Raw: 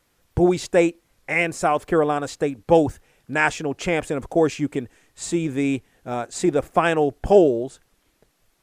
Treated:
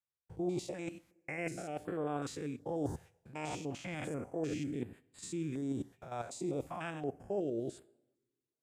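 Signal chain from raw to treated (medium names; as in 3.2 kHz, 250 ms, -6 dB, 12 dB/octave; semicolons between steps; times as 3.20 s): spectrogram pixelated in time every 100 ms; high-pass 85 Hz; gate -46 dBFS, range -28 dB; bass shelf 220 Hz +5 dB; reverse; compression 5:1, threshold -29 dBFS, peak gain reduction 17 dB; reverse; two-slope reverb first 0.56 s, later 1.7 s, from -18 dB, DRR 16 dB; step-sequenced notch 2.7 Hz 280–5900 Hz; trim -5.5 dB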